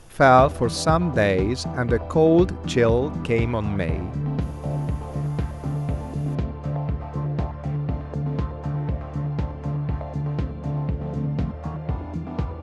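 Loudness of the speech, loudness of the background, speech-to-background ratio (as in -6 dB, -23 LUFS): -21.0 LUFS, -28.5 LUFS, 7.5 dB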